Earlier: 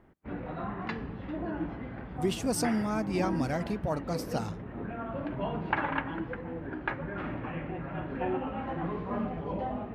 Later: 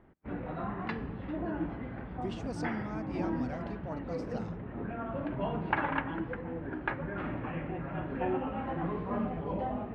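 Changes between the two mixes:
speech −9.0 dB
master: add high-frequency loss of the air 120 metres

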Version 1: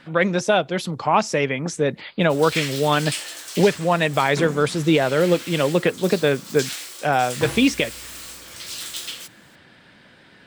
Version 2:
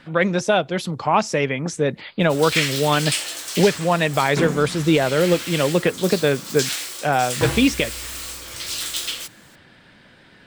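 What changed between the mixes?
background +5.0 dB
master: add low-shelf EQ 64 Hz +9 dB

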